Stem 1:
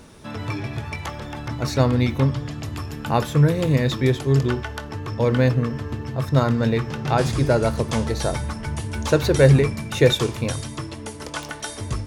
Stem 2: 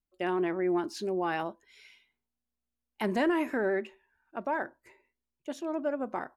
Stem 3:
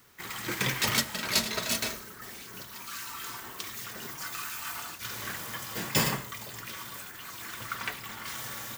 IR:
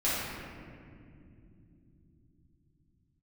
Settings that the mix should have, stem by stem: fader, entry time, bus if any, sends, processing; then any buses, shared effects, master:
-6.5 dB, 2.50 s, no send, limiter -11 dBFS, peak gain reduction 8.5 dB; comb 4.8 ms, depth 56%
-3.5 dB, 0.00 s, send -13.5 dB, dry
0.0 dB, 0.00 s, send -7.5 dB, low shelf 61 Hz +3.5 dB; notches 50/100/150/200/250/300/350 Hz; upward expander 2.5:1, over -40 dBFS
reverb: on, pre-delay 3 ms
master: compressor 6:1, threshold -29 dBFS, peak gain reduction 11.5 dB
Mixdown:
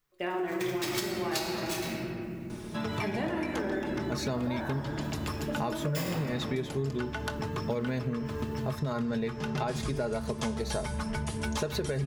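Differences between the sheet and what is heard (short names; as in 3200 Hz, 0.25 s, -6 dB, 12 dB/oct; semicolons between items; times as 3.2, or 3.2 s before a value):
stem 1 -6.5 dB -> -0.5 dB; stem 3: send -7.5 dB -> -13.5 dB; reverb return +9.0 dB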